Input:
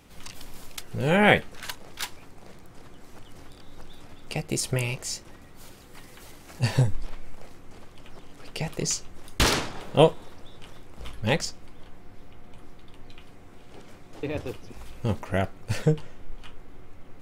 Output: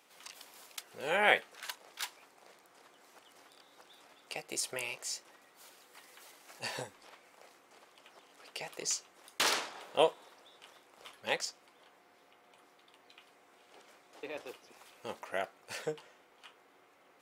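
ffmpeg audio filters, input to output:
-af "highpass=550,volume=-6dB"

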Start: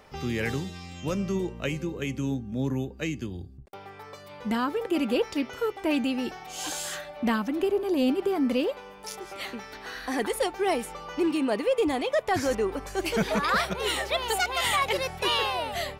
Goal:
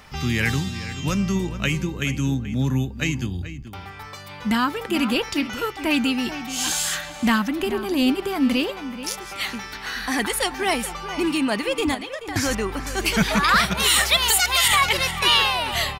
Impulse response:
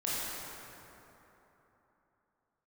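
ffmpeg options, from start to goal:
-filter_complex "[0:a]equalizer=f=480:t=o:w=1.5:g=-13,asettb=1/sr,asplit=3[a][b][c];[a]atrim=end=11.944[d];[b]atrim=start=11.94:end=12.36,asetpts=PTS-STARTPTS,afade=t=in:d=0.004:c=qsin,afade=t=out:st=0.416:d=0.004:c=qsin,acompressor=threshold=-41dB:ratio=12[e];[c]atrim=start=12.356[f];[d][e]acrossfade=d=0.004:c1=hsin:c2=qsin[g];[g][f]acrossfade=d=0.004:c1=qsin:c2=hsin,asettb=1/sr,asplit=3[h][i][j];[h]atrim=end=13.774[k];[i]atrim=start=13.77:end=14.68,asetpts=PTS-STARTPTS,afade=t=in:d=0.004:c=qsin,afade=t=out:st=0.906:d=0.004:c=qsin,highshelf=f=4.1k:g=11[l];[j]atrim=start=14.676[m];[k][l]acrossfade=d=0.004:c1=hsin:c2=qsin[n];[n][m]acrossfade=d=0.004:c1=qsin:c2=hsin,asplit=2[o][p];[p]adelay=431.5,volume=-12dB,highshelf=f=4k:g=-9.71[q];[o][q]amix=inputs=2:normalize=0,alimiter=level_in=17dB:limit=-1dB:release=50:level=0:latency=1,volume=-6.5dB"

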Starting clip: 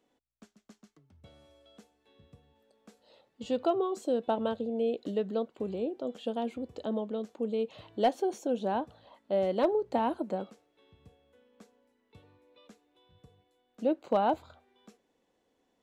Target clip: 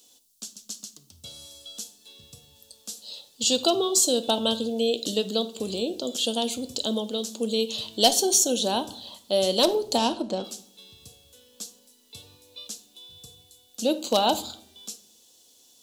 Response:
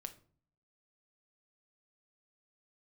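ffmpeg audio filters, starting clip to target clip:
-filter_complex "[0:a]asplit=3[a][b][c];[a]afade=t=out:st=9.97:d=0.02[d];[b]adynamicsmooth=sensitivity=6:basefreq=3.1k,afade=t=in:st=9.97:d=0.02,afade=t=out:st=10.43:d=0.02[e];[c]afade=t=in:st=10.43:d=0.02[f];[d][e][f]amix=inputs=3:normalize=0,aexciter=amount=15.1:drive=6.8:freq=3.2k,asplit=2[g][h];[1:a]atrim=start_sample=2205,asetrate=29988,aresample=44100[i];[h][i]afir=irnorm=-1:irlink=0,volume=6dB[j];[g][j]amix=inputs=2:normalize=0,volume=-4dB"

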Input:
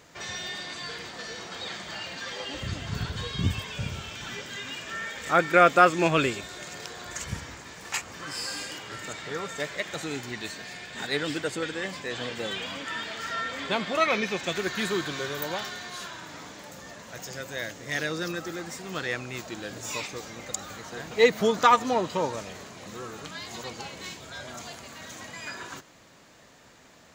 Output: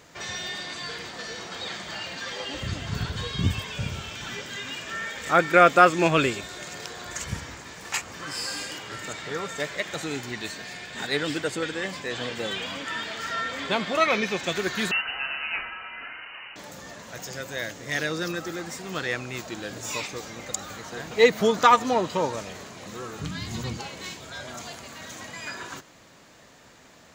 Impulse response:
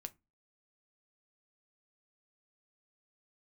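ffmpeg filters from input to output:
-filter_complex "[0:a]asettb=1/sr,asplit=3[a][b][c];[a]atrim=end=14.914[d];[b]atrim=start=14.91:end=16.56,asetpts=PTS-STARTPTS,afade=t=in:d=0.004:c=qsin,afade=t=out:st=1.646:d=0.004:c=qsin,lowpass=f=2.6k:t=q:w=0.5098,lowpass=f=2.6k:t=q:w=0.6013,lowpass=f=2.6k:t=q:w=0.9,lowpass=f=2.6k:t=q:w=2.563,afreqshift=-3100[e];[c]atrim=start=16.556[f];[d][e]acrossfade=d=0.004:c1=hsin:c2=qsin[g];[g][f]acrossfade=d=0.004:c1=qsin:c2=hsin,asplit=3[h][i][j];[h]afade=t=out:st=23.19:d=0.02[k];[i]asubboost=boost=6.5:cutoff=210,afade=t=in:st=23.19:d=0.02,afade=t=out:st=23.77:d=0.02[l];[j]afade=t=in:st=23.77:d=0.02[m];[k][l][m]amix=inputs=3:normalize=0,volume=2dB"

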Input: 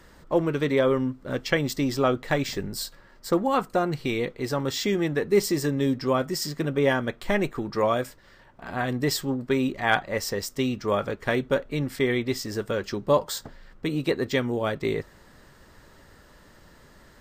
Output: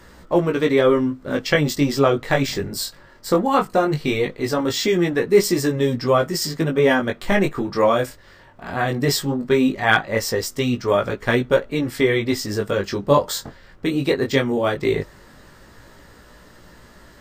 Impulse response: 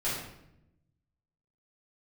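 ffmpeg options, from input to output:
-af "flanger=delay=16.5:depth=5.9:speed=0.18,volume=9dB"

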